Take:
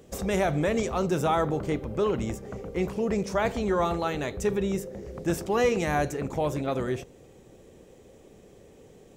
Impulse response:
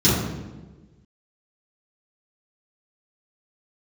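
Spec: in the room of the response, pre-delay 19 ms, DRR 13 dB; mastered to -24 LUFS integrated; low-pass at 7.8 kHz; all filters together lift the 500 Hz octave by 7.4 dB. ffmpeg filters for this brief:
-filter_complex "[0:a]lowpass=7800,equalizer=f=500:t=o:g=9,asplit=2[s0][s1];[1:a]atrim=start_sample=2205,adelay=19[s2];[s1][s2]afir=irnorm=-1:irlink=0,volume=0.0251[s3];[s0][s3]amix=inputs=2:normalize=0,volume=0.75"

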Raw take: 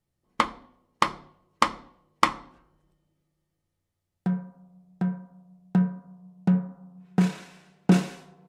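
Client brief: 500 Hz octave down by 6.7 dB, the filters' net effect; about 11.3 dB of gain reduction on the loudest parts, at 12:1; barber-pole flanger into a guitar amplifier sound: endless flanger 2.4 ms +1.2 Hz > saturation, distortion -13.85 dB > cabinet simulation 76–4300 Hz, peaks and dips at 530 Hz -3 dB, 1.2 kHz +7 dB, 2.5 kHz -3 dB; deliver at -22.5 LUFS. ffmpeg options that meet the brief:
-filter_complex "[0:a]equalizer=f=500:t=o:g=-8,acompressor=threshold=0.0398:ratio=12,asplit=2[s0][s1];[s1]adelay=2.4,afreqshift=1.2[s2];[s0][s2]amix=inputs=2:normalize=1,asoftclip=threshold=0.0473,highpass=76,equalizer=f=530:t=q:w=4:g=-3,equalizer=f=1200:t=q:w=4:g=7,equalizer=f=2500:t=q:w=4:g=-3,lowpass=f=4300:w=0.5412,lowpass=f=4300:w=1.3066,volume=8.91"

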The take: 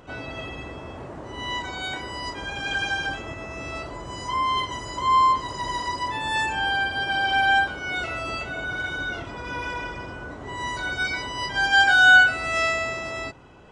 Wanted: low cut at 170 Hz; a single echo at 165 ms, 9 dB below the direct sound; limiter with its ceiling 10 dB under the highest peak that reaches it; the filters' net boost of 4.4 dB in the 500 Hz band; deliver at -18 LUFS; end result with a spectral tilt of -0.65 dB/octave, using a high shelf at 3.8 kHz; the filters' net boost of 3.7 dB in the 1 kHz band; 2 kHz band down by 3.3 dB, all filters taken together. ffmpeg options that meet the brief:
-af "highpass=170,equalizer=f=500:t=o:g=5,equalizer=f=1000:t=o:g=5,equalizer=f=2000:t=o:g=-7.5,highshelf=f=3800:g=-7,alimiter=limit=0.15:level=0:latency=1,aecho=1:1:165:0.355,volume=2.66"

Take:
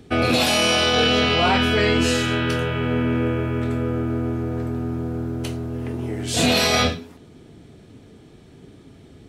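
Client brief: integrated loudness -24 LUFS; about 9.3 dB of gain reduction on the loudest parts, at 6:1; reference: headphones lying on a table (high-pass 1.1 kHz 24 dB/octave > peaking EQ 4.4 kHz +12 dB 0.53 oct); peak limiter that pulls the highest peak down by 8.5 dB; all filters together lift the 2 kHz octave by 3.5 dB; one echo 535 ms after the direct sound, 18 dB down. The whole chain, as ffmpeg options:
-af "equalizer=f=2000:t=o:g=3.5,acompressor=threshold=0.0631:ratio=6,alimiter=limit=0.0708:level=0:latency=1,highpass=f=1100:w=0.5412,highpass=f=1100:w=1.3066,equalizer=f=4400:t=o:w=0.53:g=12,aecho=1:1:535:0.126,volume=2"

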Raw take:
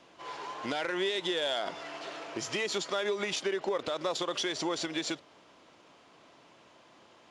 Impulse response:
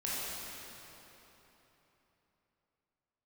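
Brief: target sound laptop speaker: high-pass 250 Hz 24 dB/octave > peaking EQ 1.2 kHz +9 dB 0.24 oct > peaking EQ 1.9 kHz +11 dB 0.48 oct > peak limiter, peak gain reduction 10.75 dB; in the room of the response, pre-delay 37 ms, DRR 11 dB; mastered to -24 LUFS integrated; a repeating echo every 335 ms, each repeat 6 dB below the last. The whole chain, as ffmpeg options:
-filter_complex "[0:a]aecho=1:1:335|670|1005|1340|1675|2010:0.501|0.251|0.125|0.0626|0.0313|0.0157,asplit=2[s0][s1];[1:a]atrim=start_sample=2205,adelay=37[s2];[s1][s2]afir=irnorm=-1:irlink=0,volume=0.15[s3];[s0][s3]amix=inputs=2:normalize=0,highpass=f=250:w=0.5412,highpass=f=250:w=1.3066,equalizer=f=1200:t=o:w=0.24:g=9,equalizer=f=1900:t=o:w=0.48:g=11,volume=2.99,alimiter=limit=0.168:level=0:latency=1"

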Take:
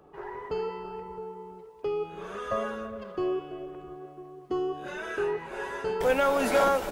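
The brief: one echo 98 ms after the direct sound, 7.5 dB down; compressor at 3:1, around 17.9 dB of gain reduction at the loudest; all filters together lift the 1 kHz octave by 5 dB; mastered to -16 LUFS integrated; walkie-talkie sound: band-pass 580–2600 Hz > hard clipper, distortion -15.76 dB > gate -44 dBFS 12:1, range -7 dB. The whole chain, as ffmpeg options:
-af "equalizer=f=1000:t=o:g=7.5,acompressor=threshold=0.00891:ratio=3,highpass=580,lowpass=2600,aecho=1:1:98:0.422,asoftclip=type=hard:threshold=0.015,agate=range=0.447:threshold=0.00631:ratio=12,volume=23.7"

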